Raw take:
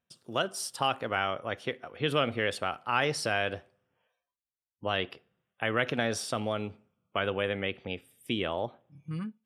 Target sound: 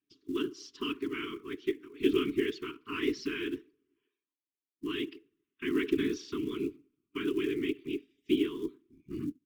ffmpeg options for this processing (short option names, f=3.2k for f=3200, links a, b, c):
-filter_complex "[0:a]acrossover=split=210 3700:gain=0.112 1 0.178[a][b][c];[a][b][c]amix=inputs=3:normalize=0,afftfilt=real='hypot(re,im)*cos(2*PI*random(0))':imag='hypot(re,im)*sin(2*PI*random(1))':win_size=512:overlap=0.75,firequalizer=gain_entry='entry(120,0);entry(200,-3);entry(280,13);entry(640,-7);entry(1000,-11);entry(1500,-12);entry(2200,-4);entry(6500,2);entry(9400,-30);entry(14000,-15)':delay=0.05:min_phase=1,acrusher=bits=8:mode=log:mix=0:aa=0.000001,asuperstop=centerf=650:order=20:qfactor=1.2,volume=6dB" -ar 48000 -c:a libmp3lame -b:a 112k